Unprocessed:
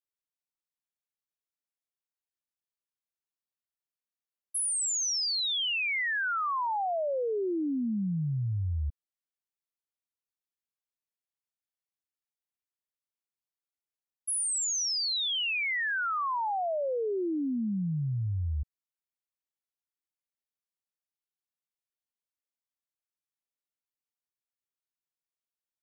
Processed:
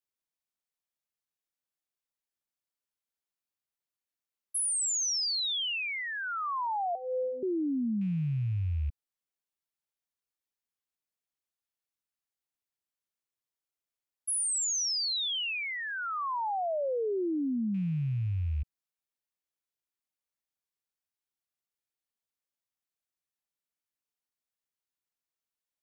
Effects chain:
loose part that buzzes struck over −33 dBFS, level −48 dBFS
dynamic equaliser 1,800 Hz, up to −6 dB, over −45 dBFS, Q 1.2
0:06.95–0:07.43: phases set to zero 255 Hz

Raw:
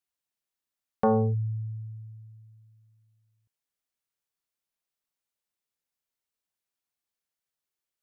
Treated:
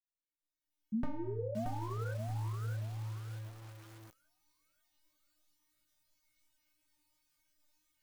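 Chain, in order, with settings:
camcorder AGC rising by 24 dB per second
flat-topped bell 510 Hz −12 dB 2.5 octaves
stiff-string resonator 300 Hz, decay 0.65 s, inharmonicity 0.002
feedback delay network reverb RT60 0.43 s, low-frequency decay 0.85×, high-frequency decay 0.4×, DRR 7.5 dB
sound drawn into the spectrogram rise, 0:00.92–0:02.13, 210–1,600 Hz −46 dBFS
mains-hum notches 60/120/180/240/300/360/420/480 Hz
chorus effect 2.9 Hz, delay 17 ms, depth 3.9 ms
downward compressor 10 to 1, threshold −48 dBFS, peak gain reduction 11.5 dB
tilt shelving filter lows +9.5 dB, about 710 Hz
on a send: delay with a high-pass on its return 536 ms, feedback 51%, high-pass 1,900 Hz, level −9 dB
on the sum: feedback echo at a low word length 627 ms, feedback 35%, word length 10 bits, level −4.5 dB
level +9.5 dB

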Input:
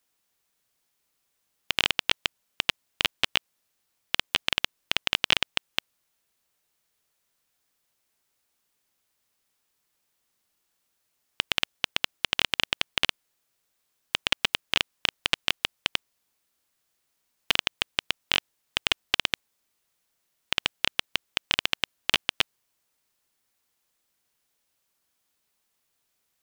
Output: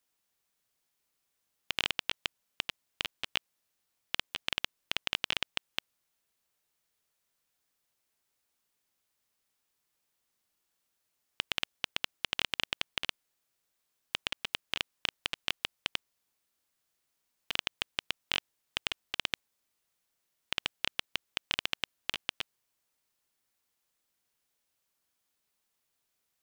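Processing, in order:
compressor whose output falls as the input rises −26 dBFS, ratio −1
level −6.5 dB

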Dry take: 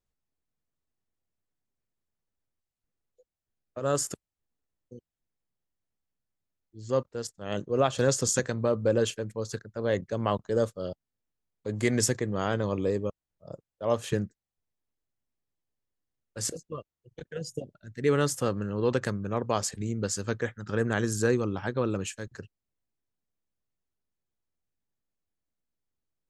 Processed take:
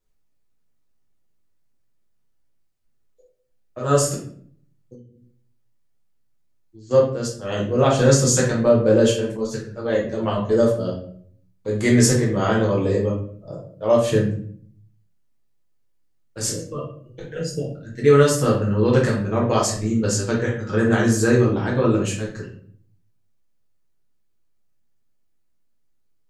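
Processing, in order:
convolution reverb RT60 0.55 s, pre-delay 6 ms, DRR −4.5 dB
0:04.94–0:06.91: downward compressor 5 to 1, threshold −45 dBFS, peak gain reduction 10 dB
0:09.37–0:10.49: string-ensemble chorus
level +2.5 dB

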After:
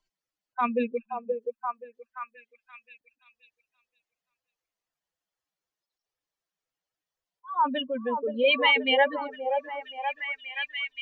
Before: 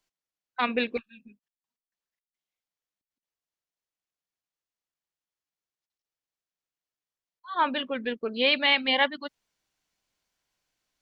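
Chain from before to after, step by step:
expanding power law on the bin magnitudes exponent 2.4
on a send: echo through a band-pass that steps 526 ms, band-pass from 590 Hz, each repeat 0.7 octaves, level −1 dB
on the sum: level +1 dB

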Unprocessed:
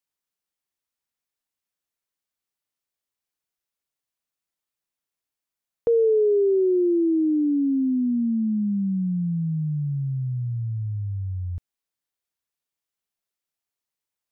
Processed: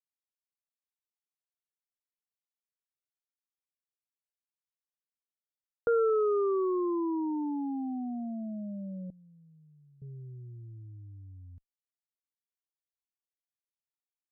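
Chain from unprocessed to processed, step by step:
0:09.10–0:10.02: high-pass filter 560 Hz 6 dB per octave
harmonic generator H 3 −11 dB, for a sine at −14.5 dBFS
level −6 dB

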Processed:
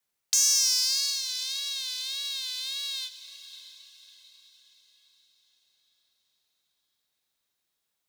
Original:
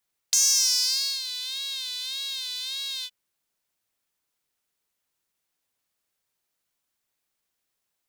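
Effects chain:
feedback delay with all-pass diffusion 607 ms, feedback 45%, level −13.5 dB
frequency shifter +31 Hz
level −1.5 dB

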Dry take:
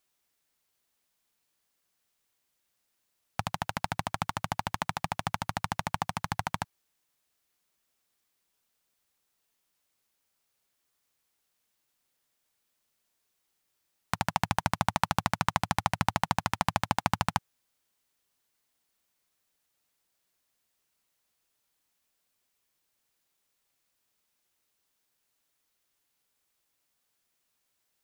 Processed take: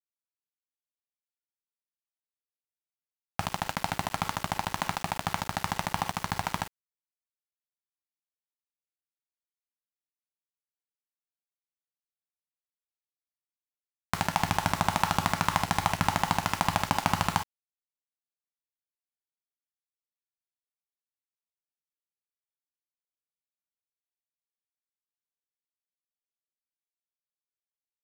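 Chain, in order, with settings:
reverb whose tail is shaped and stops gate 80 ms flat, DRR 5 dB
centre clipping without the shift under −35 dBFS
level +1 dB

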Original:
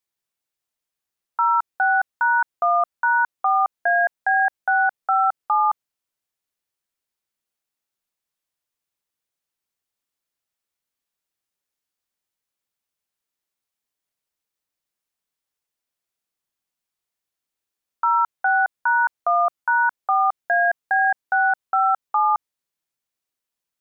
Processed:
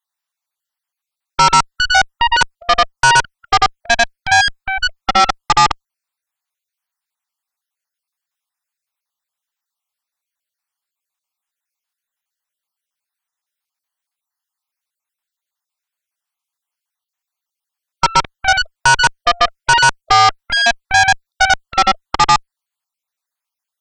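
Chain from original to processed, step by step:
time-frequency cells dropped at random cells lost 41%
low shelf with overshoot 590 Hz −13.5 dB, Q 1.5
harmonic generator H 6 −15 dB, 7 −12 dB, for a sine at −9 dBFS
level +6.5 dB

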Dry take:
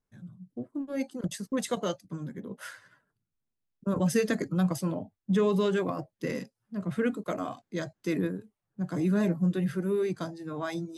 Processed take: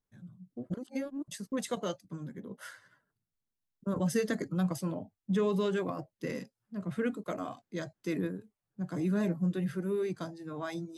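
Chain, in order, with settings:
0:00.70–0:01.28: reverse
0:02.46–0:04.48: notch filter 2,500 Hz, Q 9.1
level −4 dB

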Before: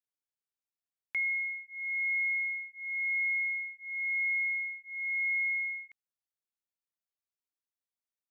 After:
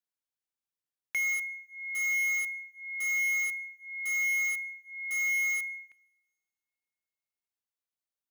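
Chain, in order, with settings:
in parallel at −6 dB: bit reduction 5 bits
on the sum: coupled-rooms reverb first 0.49 s, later 1.9 s, from −18 dB, DRR 19 dB
level −2 dB

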